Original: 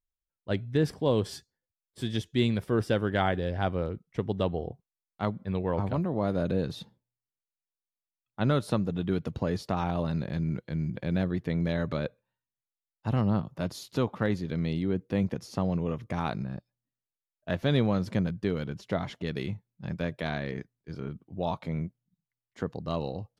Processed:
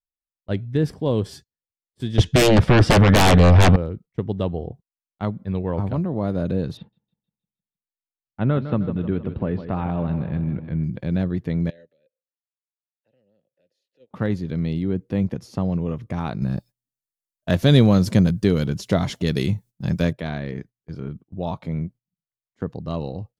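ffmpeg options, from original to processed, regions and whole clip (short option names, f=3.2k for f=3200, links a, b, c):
-filter_complex "[0:a]asettb=1/sr,asplit=3[a][b][c];[a]atrim=end=2.184[d];[b]atrim=start=2.18:end=3.76,asetpts=PTS-STARTPTS,afade=t=in:d=0.004:c=qsin,afade=t=out:st=1.576:d=0.004:c=qsin,lowpass=5k,equalizer=f=370:t=o:w=0.33:g=-14.5,aeval=exprs='0.211*sin(PI/2*6.31*val(0)/0.211)':c=same[e];[c]atrim=start=3.756[f];[d][e]acrossfade=d=0.004:c1=hsin:c2=qsin[g];[g][f]acrossfade=d=0.004:c1=qsin:c2=hsin,asettb=1/sr,asplit=3[h][i][j];[h]atrim=end=6.774[k];[i]atrim=start=6.77:end=10.84,asetpts=PTS-STARTPTS,afade=t=in:d=0.004:c=qsin,afade=t=out:st=4.066:d=0.004:c=qsin,lowpass=f=3k:w=0.5412,lowpass=f=3k:w=1.3066,aecho=1:1:156|312|468|624|780|936:0.282|0.147|0.0762|0.0396|0.0206|0.0107,atrim=end_sample=179487[l];[j]atrim=start=10.836[m];[k][l]acrossfade=d=0.004:c1=hsin:c2=qsin[n];[n][m]acrossfade=d=0.004:c1=qsin:c2=hsin,asettb=1/sr,asplit=3[o][p][q];[o]atrim=end=11.704[r];[p]atrim=start=11.7:end=14.11,asetpts=PTS-STARTPTS,afade=t=in:d=0.004:c=qsin,afade=t=out:st=2.406:d=0.004:c=qsin,asplit=3[s][t][u];[s]bandpass=f=530:t=q:w=8,volume=0dB[v];[t]bandpass=f=1.84k:t=q:w=8,volume=-6dB[w];[u]bandpass=f=2.48k:t=q:w=8,volume=-9dB[x];[v][w][x]amix=inputs=3:normalize=0,acrossover=split=260|3000[y][z][aa];[z]acompressor=threshold=-51dB:ratio=6:attack=3.2:release=140:knee=2.83:detection=peak[ab];[y][ab][aa]amix=inputs=3:normalize=0,bass=f=250:g=-8,treble=f=4k:g=7[ac];[q]atrim=start=14.106[ad];[r][ac]acrossfade=d=0.004:c1=hsin:c2=qsin[ae];[ae][ad]acrossfade=d=0.004:c1=qsin:c2=hsin,asettb=1/sr,asplit=3[af][ag][ah];[af]atrim=end=16.424[ai];[ag]atrim=start=16.42:end=20.13,asetpts=PTS-STARTPTS,afade=t=in:d=0.004:c=qsin,afade=t=out:st=3.706:d=0.004:c=qsin,bass=f=250:g=0,treble=f=4k:g=13,acontrast=57,bandreject=f=840:w=25[aj];[ah]atrim=start=20.126[ak];[ai][aj]acrossfade=d=0.004:c1=hsin:c2=qsin[al];[al][ak]acrossfade=d=0.004:c1=qsin:c2=hsin,agate=range=-17dB:threshold=-46dB:ratio=16:detection=peak,lowshelf=f=390:g=7"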